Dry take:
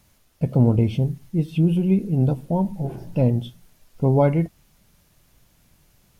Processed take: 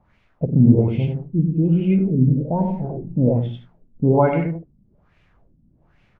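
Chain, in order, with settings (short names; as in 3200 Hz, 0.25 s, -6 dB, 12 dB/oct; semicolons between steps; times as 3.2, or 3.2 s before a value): tapped delay 53/94/168 ms -10/-4/-11 dB; spectral repair 1.63–2.48, 640–1700 Hz before; LFO low-pass sine 1.2 Hz 220–2500 Hz; gain -1.5 dB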